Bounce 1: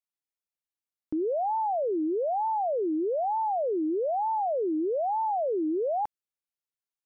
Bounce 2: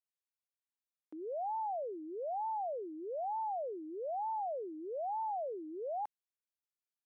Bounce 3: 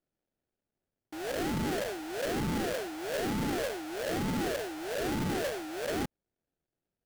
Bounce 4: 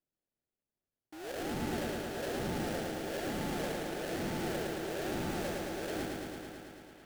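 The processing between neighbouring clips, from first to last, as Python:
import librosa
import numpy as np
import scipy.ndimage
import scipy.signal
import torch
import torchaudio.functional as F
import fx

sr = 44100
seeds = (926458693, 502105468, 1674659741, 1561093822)

y1 = scipy.signal.sosfilt(scipy.signal.butter(2, 520.0, 'highpass', fs=sr, output='sos'), x)
y1 = y1 * librosa.db_to_amplitude(-8.5)
y2 = fx.sample_hold(y1, sr, seeds[0], rate_hz=1100.0, jitter_pct=20)
y2 = y2 * librosa.db_to_amplitude(5.5)
y3 = fx.echo_wet_bandpass(y2, sr, ms=541, feedback_pct=61, hz=1600.0, wet_db=-14.5)
y3 = fx.echo_crushed(y3, sr, ms=110, feedback_pct=80, bits=11, wet_db=-3.0)
y3 = y3 * librosa.db_to_amplitude(-7.0)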